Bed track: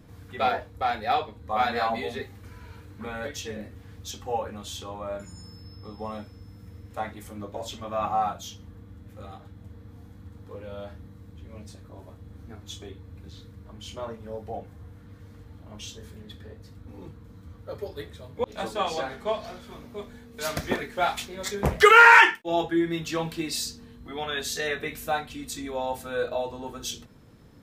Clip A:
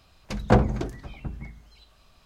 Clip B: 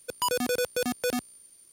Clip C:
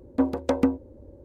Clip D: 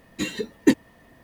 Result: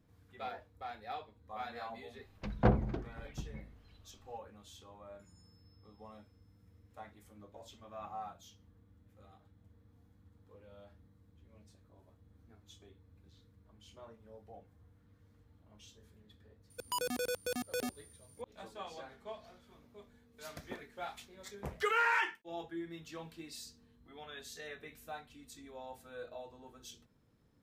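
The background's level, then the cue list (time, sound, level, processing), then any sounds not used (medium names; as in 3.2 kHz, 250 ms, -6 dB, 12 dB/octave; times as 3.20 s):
bed track -18 dB
2.13 s: add A -8.5 dB + distance through air 200 m
16.70 s: add B -9 dB
not used: C, D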